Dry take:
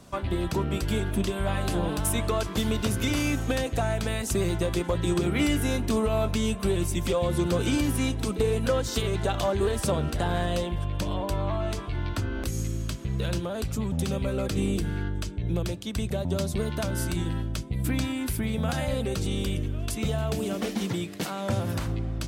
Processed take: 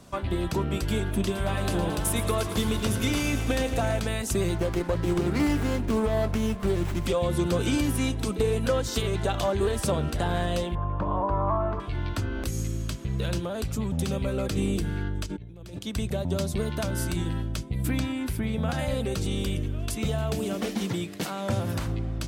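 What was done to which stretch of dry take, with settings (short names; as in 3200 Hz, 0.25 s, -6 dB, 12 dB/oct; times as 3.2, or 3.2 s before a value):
1.13–4 lo-fi delay 0.111 s, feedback 80%, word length 9-bit, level -11.5 dB
4.55–7.06 running maximum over 9 samples
10.75–11.8 synth low-pass 1100 Hz, resonance Q 3.1
15.26–15.79 negative-ratio compressor -40 dBFS
17.99–18.79 bell 13000 Hz -7 dB 2.1 oct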